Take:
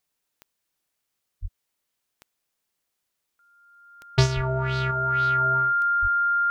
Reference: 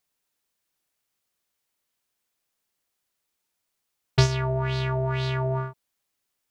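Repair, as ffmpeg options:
-filter_complex "[0:a]adeclick=t=4,bandreject=f=1.4k:w=30,asplit=3[a][b][c];[a]afade=t=out:st=1.41:d=0.02[d];[b]highpass=f=140:w=0.5412,highpass=f=140:w=1.3066,afade=t=in:st=1.41:d=0.02,afade=t=out:st=1.53:d=0.02[e];[c]afade=t=in:st=1.53:d=0.02[f];[d][e][f]amix=inputs=3:normalize=0,asplit=3[g][h][i];[g]afade=t=out:st=4.35:d=0.02[j];[h]highpass=f=140:w=0.5412,highpass=f=140:w=1.3066,afade=t=in:st=4.35:d=0.02,afade=t=out:st=4.47:d=0.02[k];[i]afade=t=in:st=4.47:d=0.02[l];[j][k][l]amix=inputs=3:normalize=0,asplit=3[m][n][o];[m]afade=t=out:st=6.01:d=0.02[p];[n]highpass=f=140:w=0.5412,highpass=f=140:w=1.3066,afade=t=in:st=6.01:d=0.02,afade=t=out:st=6.13:d=0.02[q];[o]afade=t=in:st=6.13:d=0.02[r];[p][q][r]amix=inputs=3:normalize=0,asetnsamples=n=441:p=0,asendcmd='4.91 volume volume 5dB',volume=0dB"

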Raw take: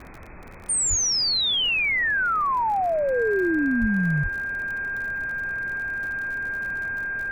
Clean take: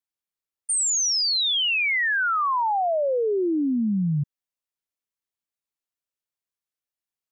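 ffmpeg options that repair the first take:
-filter_complex "[0:a]adeclick=t=4,bandreject=f=1.6k:w=30,asplit=3[a][b][c];[a]afade=t=out:st=0.89:d=0.02[d];[b]highpass=f=140:w=0.5412,highpass=f=140:w=1.3066,afade=t=in:st=0.89:d=0.02,afade=t=out:st=1.01:d=0.02[e];[c]afade=t=in:st=1.01:d=0.02[f];[d][e][f]amix=inputs=3:normalize=0,asplit=3[g][h][i];[g]afade=t=out:st=3.8:d=0.02[j];[h]highpass=f=140:w=0.5412,highpass=f=140:w=1.3066,afade=t=in:st=3.8:d=0.02,afade=t=out:st=3.92:d=0.02[k];[i]afade=t=in:st=3.92:d=0.02[l];[j][k][l]amix=inputs=3:normalize=0,asplit=3[m][n][o];[m]afade=t=out:st=4.22:d=0.02[p];[n]highpass=f=140:w=0.5412,highpass=f=140:w=1.3066,afade=t=in:st=4.22:d=0.02,afade=t=out:st=4.34:d=0.02[q];[o]afade=t=in:st=4.34:d=0.02[r];[p][q][r]amix=inputs=3:normalize=0,afftdn=nr=30:nf=-29"

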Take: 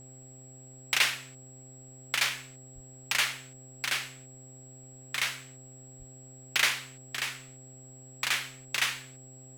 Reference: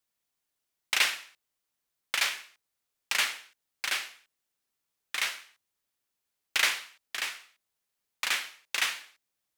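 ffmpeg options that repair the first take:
-filter_complex "[0:a]bandreject=f=130.6:t=h:w=4,bandreject=f=261.2:t=h:w=4,bandreject=f=391.8:t=h:w=4,bandreject=f=522.4:t=h:w=4,bandreject=f=653:t=h:w=4,bandreject=f=783.6:t=h:w=4,bandreject=f=7.7k:w=30,asplit=3[a][b][c];[a]afade=t=out:st=2.74:d=0.02[d];[b]highpass=f=140:w=0.5412,highpass=f=140:w=1.3066,afade=t=in:st=2.74:d=0.02,afade=t=out:st=2.86:d=0.02[e];[c]afade=t=in:st=2.86:d=0.02[f];[d][e][f]amix=inputs=3:normalize=0,asplit=3[g][h][i];[g]afade=t=out:st=5.98:d=0.02[j];[h]highpass=f=140:w=0.5412,highpass=f=140:w=1.3066,afade=t=in:st=5.98:d=0.02,afade=t=out:st=6.1:d=0.02[k];[i]afade=t=in:st=6.1:d=0.02[l];[j][k][l]amix=inputs=3:normalize=0,agate=range=-21dB:threshold=-42dB"

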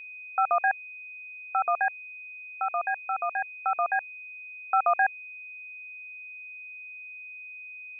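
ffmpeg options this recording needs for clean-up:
-af "bandreject=f=2.5k:w=30"

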